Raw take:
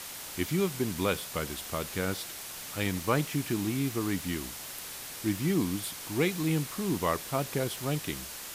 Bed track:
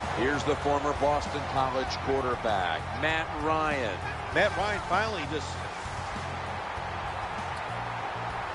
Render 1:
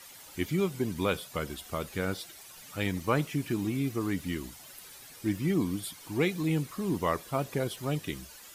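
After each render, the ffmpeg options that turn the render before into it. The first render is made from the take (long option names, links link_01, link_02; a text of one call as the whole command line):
ffmpeg -i in.wav -af "afftdn=noise_reduction=12:noise_floor=-42" out.wav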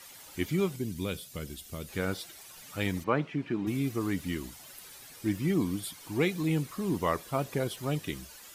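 ffmpeg -i in.wav -filter_complex "[0:a]asettb=1/sr,asplit=3[link_01][link_02][link_03];[link_01]atrim=end=0.764[link_04];[link_02]atrim=start=0.76:end=1.89,asetpts=PTS-STARTPTS,afade=type=in:duration=0.004:curve=qsin,afade=type=out:start_time=1.126:duration=0.004:curve=qsin,equalizer=frequency=1000:width_type=o:width=2.3:gain=-13.5[link_05];[link_03]atrim=start=1.886[link_06];[link_04][link_05]acrossfade=duration=0.004:curve1=hsin:curve2=qsin[link_07];[link_07][link_06]acrossfade=duration=0.004:curve1=qsin:curve2=hsin,asplit=3[link_08][link_09][link_10];[link_08]afade=type=out:start_time=3.03:duration=0.02[link_11];[link_09]highpass=150,lowpass=2500,afade=type=in:start_time=3.03:duration=0.02,afade=type=out:start_time=3.66:duration=0.02[link_12];[link_10]afade=type=in:start_time=3.66:duration=0.02[link_13];[link_11][link_12][link_13]amix=inputs=3:normalize=0" out.wav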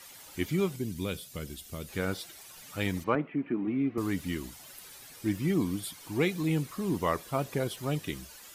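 ffmpeg -i in.wav -filter_complex "[0:a]asettb=1/sr,asplit=3[link_01][link_02][link_03];[link_01]atrim=end=3.154[link_04];[link_02]atrim=start=3.15:end=3.98,asetpts=PTS-STARTPTS,afade=type=in:duration=0.004:curve=qsin,afade=type=out:start_time=0.826:duration=0.004:curve=qsin,highpass=180,equalizer=frequency=260:width_type=q:width=4:gain=5,equalizer=frequency=940:width_type=q:width=4:gain=-3,equalizer=frequency=1600:width_type=q:width=4:gain=-4,lowpass=frequency=2300:width=0.5412,lowpass=frequency=2300:width=1.3066[link_05];[link_03]atrim=start=3.976[link_06];[link_04][link_05]acrossfade=duration=0.004:curve1=hsin:curve2=qsin[link_07];[link_07][link_06]acrossfade=duration=0.004:curve1=qsin:curve2=hsin" out.wav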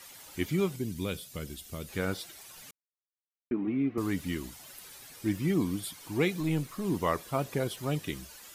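ffmpeg -i in.wav -filter_complex "[0:a]asettb=1/sr,asplit=3[link_01][link_02][link_03];[link_01]atrim=end=6.404[link_04];[link_02]atrim=start=6.4:end=6.85,asetpts=PTS-STARTPTS,afade=type=in:duration=0.004:curve=qsin,afade=type=out:start_time=0.446:duration=0.004:curve=qsin,aeval=exprs='if(lt(val(0),0),0.708*val(0),val(0))':channel_layout=same[link_05];[link_03]atrim=start=6.846[link_06];[link_04][link_05]acrossfade=duration=0.004:curve1=hsin:curve2=qsin[link_07];[link_07][link_06]acrossfade=duration=0.004:curve1=qsin:curve2=hsin,asplit=3[link_08][link_09][link_10];[link_08]atrim=end=2.71,asetpts=PTS-STARTPTS,afade=type=out:start_time=2.706:duration=0.004:curve=hsin[link_11];[link_09]atrim=start=2.71:end=3.51,asetpts=PTS-STARTPTS,volume=0[link_12];[link_10]atrim=start=3.51,asetpts=PTS-STARTPTS,afade=type=in:duration=0.004:curve=hsin[link_13];[link_11][link_12][link_13]concat=n=3:v=0:a=1" out.wav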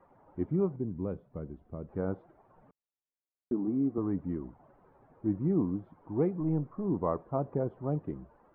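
ffmpeg -i in.wav -af "lowpass=frequency=1000:width=0.5412,lowpass=frequency=1000:width=1.3066,equalizer=frequency=68:width_type=o:width=1:gain=-3.5" out.wav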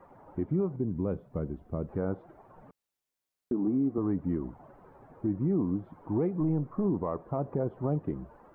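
ffmpeg -i in.wav -af "acontrast=89,alimiter=limit=-20.5dB:level=0:latency=1:release=222" out.wav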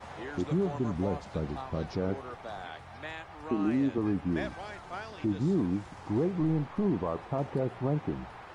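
ffmpeg -i in.wav -i bed.wav -filter_complex "[1:a]volume=-13.5dB[link_01];[0:a][link_01]amix=inputs=2:normalize=0" out.wav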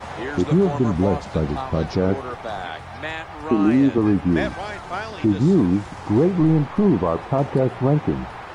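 ffmpeg -i in.wav -af "volume=11.5dB" out.wav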